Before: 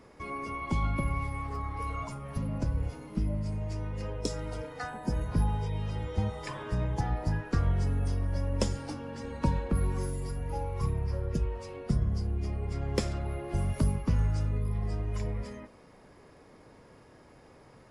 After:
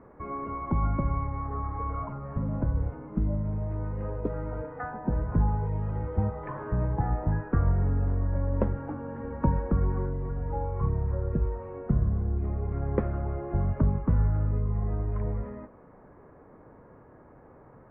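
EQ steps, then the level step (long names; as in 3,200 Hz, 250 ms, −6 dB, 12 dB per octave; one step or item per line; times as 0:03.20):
inverse Chebyshev low-pass filter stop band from 5,100 Hz, stop band 60 dB
+3.0 dB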